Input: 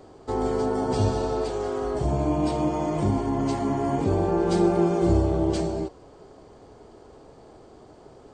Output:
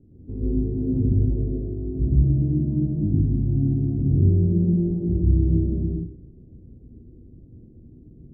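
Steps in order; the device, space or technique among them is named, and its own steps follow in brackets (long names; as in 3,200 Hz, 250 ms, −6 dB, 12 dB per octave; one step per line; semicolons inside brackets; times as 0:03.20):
club heard from the street (brickwall limiter −16 dBFS, peak gain reduction 6 dB; low-pass filter 240 Hz 24 dB per octave; convolution reverb RT60 0.60 s, pre-delay 108 ms, DRR −5 dB)
level +2.5 dB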